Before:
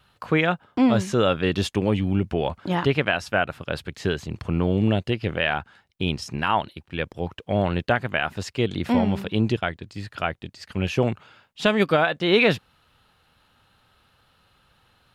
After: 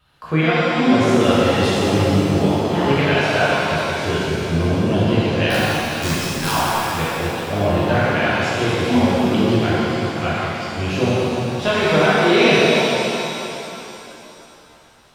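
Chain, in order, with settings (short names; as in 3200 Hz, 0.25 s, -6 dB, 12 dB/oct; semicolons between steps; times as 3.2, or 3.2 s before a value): 5.5–6.51 wrapped overs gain 11.5 dB; shimmer reverb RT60 3.1 s, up +7 st, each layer -8 dB, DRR -10 dB; gain -4.5 dB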